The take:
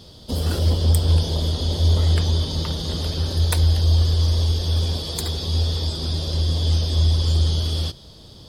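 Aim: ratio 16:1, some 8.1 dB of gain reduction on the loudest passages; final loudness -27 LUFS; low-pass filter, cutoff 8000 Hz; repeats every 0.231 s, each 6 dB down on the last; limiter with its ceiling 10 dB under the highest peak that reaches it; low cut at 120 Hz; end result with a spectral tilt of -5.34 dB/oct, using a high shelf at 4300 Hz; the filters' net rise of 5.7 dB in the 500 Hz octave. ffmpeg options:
-af "highpass=120,lowpass=8k,equalizer=f=500:t=o:g=7,highshelf=f=4.3k:g=-6,acompressor=threshold=-26dB:ratio=16,alimiter=level_in=0.5dB:limit=-24dB:level=0:latency=1,volume=-0.5dB,aecho=1:1:231|462|693|924|1155|1386:0.501|0.251|0.125|0.0626|0.0313|0.0157,volume=5dB"

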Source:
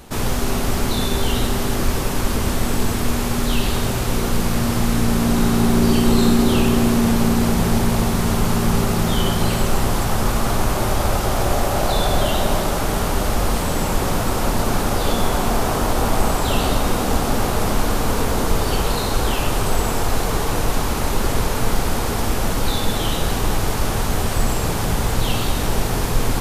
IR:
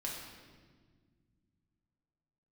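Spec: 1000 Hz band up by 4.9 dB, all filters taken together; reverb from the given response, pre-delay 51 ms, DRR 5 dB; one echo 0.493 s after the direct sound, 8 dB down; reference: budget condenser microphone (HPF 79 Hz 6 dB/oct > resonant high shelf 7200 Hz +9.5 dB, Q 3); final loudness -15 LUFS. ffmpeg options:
-filter_complex "[0:a]equalizer=f=1k:t=o:g=6.5,aecho=1:1:493:0.398,asplit=2[a][b];[1:a]atrim=start_sample=2205,adelay=51[c];[b][c]afir=irnorm=-1:irlink=0,volume=-6dB[d];[a][d]amix=inputs=2:normalize=0,highpass=f=79:p=1,highshelf=f=7.2k:t=q:w=3:g=9.5,volume=-0.5dB"

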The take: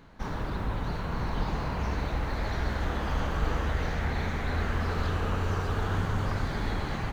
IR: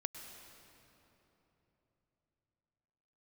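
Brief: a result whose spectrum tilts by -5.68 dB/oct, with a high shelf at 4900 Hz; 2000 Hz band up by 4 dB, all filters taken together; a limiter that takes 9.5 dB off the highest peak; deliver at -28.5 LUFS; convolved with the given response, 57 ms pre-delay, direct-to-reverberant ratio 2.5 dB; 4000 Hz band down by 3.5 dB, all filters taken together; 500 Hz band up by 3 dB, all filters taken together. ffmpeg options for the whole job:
-filter_complex "[0:a]equalizer=f=500:t=o:g=3.5,equalizer=f=2k:t=o:g=6.5,equalizer=f=4k:t=o:g=-5.5,highshelf=f=4.9k:g=-4,alimiter=limit=-23.5dB:level=0:latency=1,asplit=2[a][b];[1:a]atrim=start_sample=2205,adelay=57[c];[b][c]afir=irnorm=-1:irlink=0,volume=-1.5dB[d];[a][d]amix=inputs=2:normalize=0,volume=3dB"

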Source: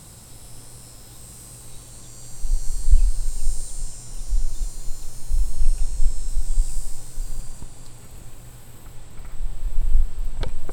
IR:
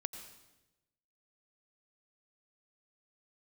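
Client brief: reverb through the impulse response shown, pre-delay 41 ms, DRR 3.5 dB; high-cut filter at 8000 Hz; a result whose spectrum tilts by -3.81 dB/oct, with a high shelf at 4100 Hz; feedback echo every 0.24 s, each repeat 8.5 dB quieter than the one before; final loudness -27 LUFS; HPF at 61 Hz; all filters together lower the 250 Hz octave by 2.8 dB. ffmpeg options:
-filter_complex "[0:a]highpass=61,lowpass=8k,equalizer=f=250:t=o:g=-4,highshelf=f=4.1k:g=6.5,aecho=1:1:240|480|720|960:0.376|0.143|0.0543|0.0206,asplit=2[a][b];[1:a]atrim=start_sample=2205,adelay=41[c];[b][c]afir=irnorm=-1:irlink=0,volume=-2.5dB[d];[a][d]amix=inputs=2:normalize=0,volume=8dB"

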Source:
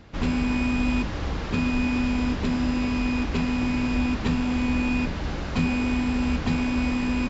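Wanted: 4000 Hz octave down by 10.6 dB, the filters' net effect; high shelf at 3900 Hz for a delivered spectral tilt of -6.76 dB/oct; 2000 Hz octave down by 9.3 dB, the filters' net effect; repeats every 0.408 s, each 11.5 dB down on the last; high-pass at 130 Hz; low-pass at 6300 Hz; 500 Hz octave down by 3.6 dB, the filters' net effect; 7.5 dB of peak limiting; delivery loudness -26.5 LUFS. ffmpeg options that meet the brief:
-af "highpass=130,lowpass=6.3k,equalizer=f=500:t=o:g=-4,equalizer=f=2k:t=o:g=-8,highshelf=f=3.9k:g=-4,equalizer=f=4k:t=o:g=-8,alimiter=limit=-22.5dB:level=0:latency=1,aecho=1:1:408|816|1224:0.266|0.0718|0.0194,volume=3dB"

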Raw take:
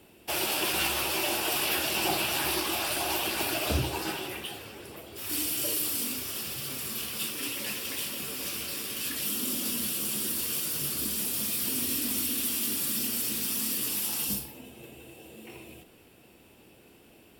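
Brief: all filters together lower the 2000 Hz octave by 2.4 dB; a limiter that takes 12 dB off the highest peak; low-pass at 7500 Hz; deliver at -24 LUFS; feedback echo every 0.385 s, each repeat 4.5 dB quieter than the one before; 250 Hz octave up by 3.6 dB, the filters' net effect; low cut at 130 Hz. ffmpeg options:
-af "highpass=130,lowpass=7.5k,equalizer=f=250:t=o:g=5,equalizer=f=2k:t=o:g=-3.5,alimiter=level_in=3.5dB:limit=-24dB:level=0:latency=1,volume=-3.5dB,aecho=1:1:385|770|1155|1540|1925|2310|2695|3080|3465:0.596|0.357|0.214|0.129|0.0772|0.0463|0.0278|0.0167|0.01,volume=10.5dB"

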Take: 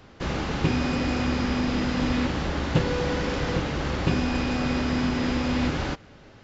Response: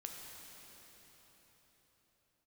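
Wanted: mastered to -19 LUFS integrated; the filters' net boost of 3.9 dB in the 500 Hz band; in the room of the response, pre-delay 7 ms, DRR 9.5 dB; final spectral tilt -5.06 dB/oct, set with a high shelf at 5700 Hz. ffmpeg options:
-filter_complex "[0:a]equalizer=f=500:t=o:g=4.5,highshelf=f=5.7k:g=3.5,asplit=2[a][b];[1:a]atrim=start_sample=2205,adelay=7[c];[b][c]afir=irnorm=-1:irlink=0,volume=-7dB[d];[a][d]amix=inputs=2:normalize=0,volume=6dB"

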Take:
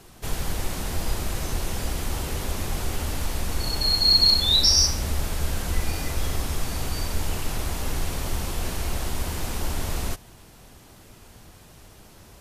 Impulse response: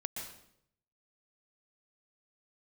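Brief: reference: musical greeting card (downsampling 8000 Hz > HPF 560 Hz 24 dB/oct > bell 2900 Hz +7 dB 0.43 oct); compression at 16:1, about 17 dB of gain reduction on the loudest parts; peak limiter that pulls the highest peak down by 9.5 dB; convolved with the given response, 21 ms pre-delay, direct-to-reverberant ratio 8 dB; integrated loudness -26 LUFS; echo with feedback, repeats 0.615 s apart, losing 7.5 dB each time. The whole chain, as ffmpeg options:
-filter_complex "[0:a]acompressor=threshold=-31dB:ratio=16,alimiter=level_in=7.5dB:limit=-24dB:level=0:latency=1,volume=-7.5dB,aecho=1:1:615|1230|1845|2460|3075:0.422|0.177|0.0744|0.0312|0.0131,asplit=2[a][b];[1:a]atrim=start_sample=2205,adelay=21[c];[b][c]afir=irnorm=-1:irlink=0,volume=-8.5dB[d];[a][d]amix=inputs=2:normalize=0,aresample=8000,aresample=44100,highpass=f=560:w=0.5412,highpass=f=560:w=1.3066,equalizer=f=2.9k:t=o:w=0.43:g=7,volume=20.5dB"

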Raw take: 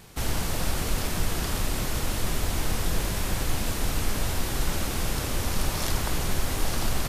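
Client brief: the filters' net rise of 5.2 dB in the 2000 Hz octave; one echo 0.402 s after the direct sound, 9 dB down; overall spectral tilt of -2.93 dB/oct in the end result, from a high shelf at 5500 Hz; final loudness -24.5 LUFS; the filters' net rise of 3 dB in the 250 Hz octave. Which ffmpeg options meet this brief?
-af "equalizer=f=250:t=o:g=4,equalizer=f=2k:t=o:g=5.5,highshelf=f=5.5k:g=7,aecho=1:1:402:0.355,volume=0.5dB"

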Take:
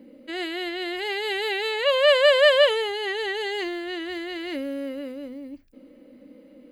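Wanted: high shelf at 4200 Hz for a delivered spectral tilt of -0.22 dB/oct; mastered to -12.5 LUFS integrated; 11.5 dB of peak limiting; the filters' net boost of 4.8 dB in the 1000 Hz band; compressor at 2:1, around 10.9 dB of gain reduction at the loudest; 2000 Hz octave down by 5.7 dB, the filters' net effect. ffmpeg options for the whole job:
-af "equalizer=f=1k:t=o:g=8,equalizer=f=2k:t=o:g=-8,highshelf=f=4.2k:g=-5.5,acompressor=threshold=-33dB:ratio=2,volume=24dB,alimiter=limit=-5.5dB:level=0:latency=1"

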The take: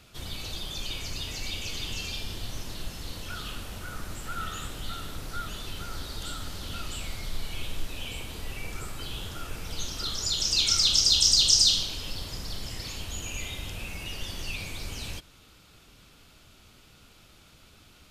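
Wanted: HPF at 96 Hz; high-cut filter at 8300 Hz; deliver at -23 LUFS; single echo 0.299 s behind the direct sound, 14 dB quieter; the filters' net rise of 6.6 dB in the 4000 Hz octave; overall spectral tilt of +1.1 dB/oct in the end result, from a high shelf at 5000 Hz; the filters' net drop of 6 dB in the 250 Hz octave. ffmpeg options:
-af "highpass=96,lowpass=8.3k,equalizer=f=250:t=o:g=-8.5,equalizer=f=4k:t=o:g=6,highshelf=f=5k:g=5,aecho=1:1:299:0.2,volume=-3dB"

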